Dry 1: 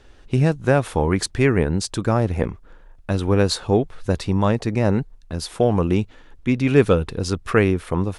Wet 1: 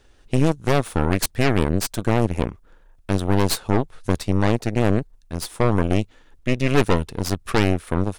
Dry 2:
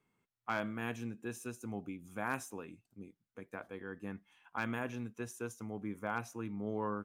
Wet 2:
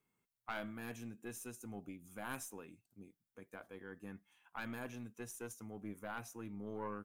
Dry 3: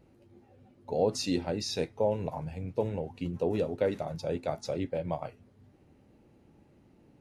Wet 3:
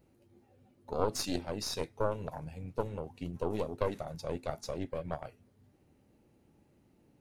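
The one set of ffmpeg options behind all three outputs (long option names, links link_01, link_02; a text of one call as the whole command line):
ffmpeg -i in.wav -af "highshelf=frequency=7300:gain=11,aeval=exprs='0.944*(cos(1*acos(clip(val(0)/0.944,-1,1)))-cos(1*PI/2))+0.0531*(cos(5*acos(clip(val(0)/0.944,-1,1)))-cos(5*PI/2))+0.0422*(cos(7*acos(clip(val(0)/0.944,-1,1)))-cos(7*PI/2))+0.237*(cos(8*acos(clip(val(0)/0.944,-1,1)))-cos(8*PI/2))':channel_layout=same,volume=-5.5dB" out.wav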